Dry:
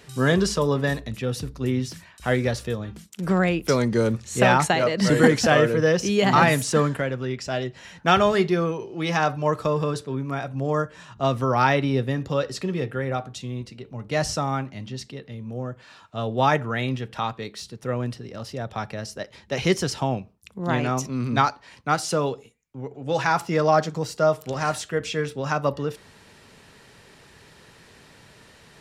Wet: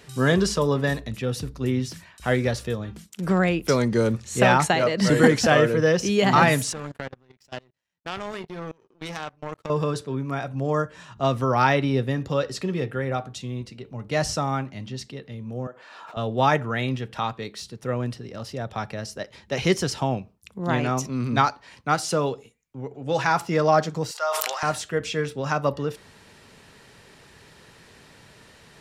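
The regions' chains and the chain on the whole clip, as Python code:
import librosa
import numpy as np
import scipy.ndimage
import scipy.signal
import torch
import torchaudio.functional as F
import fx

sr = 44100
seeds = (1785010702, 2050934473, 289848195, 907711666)

y = fx.chain(x, sr, fx.level_steps(step_db=13),
    fx.power_curve(exponent=2.0), at=(6.73, 9.7))
y = fx.chain(y, sr, fx.highpass(hz=490.0, slope=12),
    fx.high_shelf(hz=2300.0, db=-12.0),
    fx.pre_swell(db_per_s=32.0), at=(15.67, 16.17))
y = fx.chain(y, sr, fx.highpass(hz=780.0, slope=24),
    fx.sustainer(db_per_s=27.0), at=(24.11, 24.63))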